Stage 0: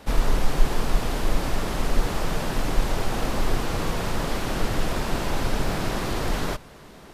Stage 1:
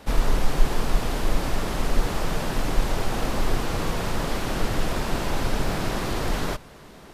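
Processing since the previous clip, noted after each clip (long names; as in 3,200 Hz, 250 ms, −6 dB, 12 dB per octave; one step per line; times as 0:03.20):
no processing that can be heard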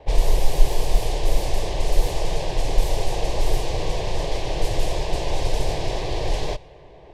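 pitch vibrato 7.4 Hz 63 cents
low-pass that shuts in the quiet parts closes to 1,900 Hz, open at −15 dBFS
phaser with its sweep stopped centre 560 Hz, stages 4
level +4 dB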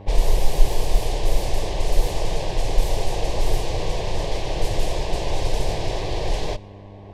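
hum with harmonics 100 Hz, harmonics 11, −42 dBFS −6 dB per octave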